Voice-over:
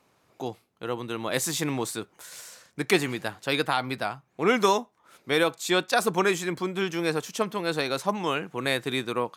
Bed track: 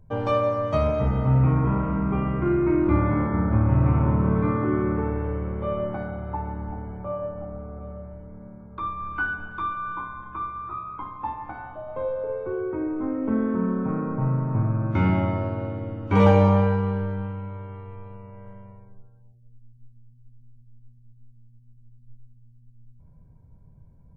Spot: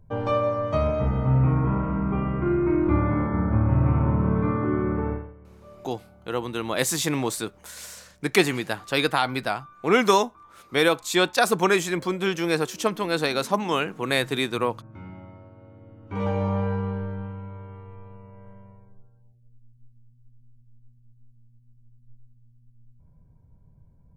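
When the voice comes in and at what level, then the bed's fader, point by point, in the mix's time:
5.45 s, +3.0 dB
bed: 5.13 s -1 dB
5.35 s -20.5 dB
15.54 s -20.5 dB
16.78 s -3.5 dB

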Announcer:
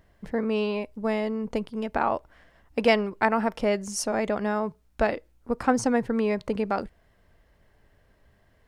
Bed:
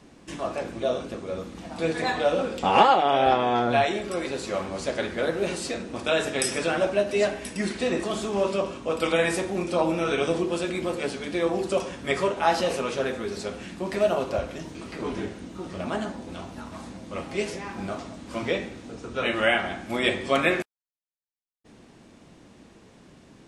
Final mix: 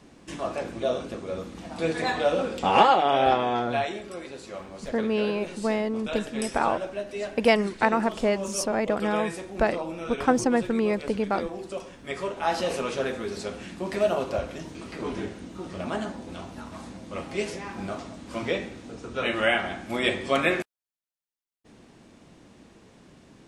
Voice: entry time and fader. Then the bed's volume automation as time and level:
4.60 s, +0.5 dB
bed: 3.29 s -0.5 dB
4.28 s -9.5 dB
11.95 s -9.5 dB
12.77 s -1 dB

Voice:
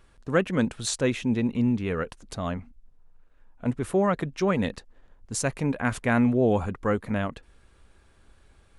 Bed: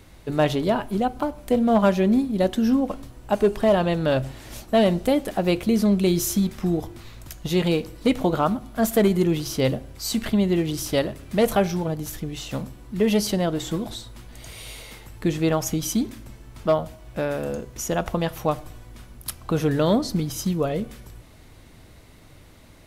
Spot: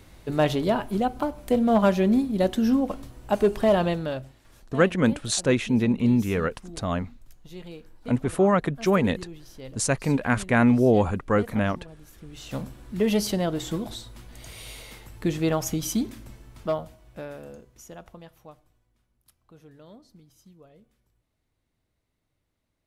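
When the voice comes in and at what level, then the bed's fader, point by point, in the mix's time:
4.45 s, +3.0 dB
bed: 3.87 s -1.5 dB
4.47 s -20 dB
12.08 s -20 dB
12.56 s -2.5 dB
16.32 s -2.5 dB
18.99 s -29 dB

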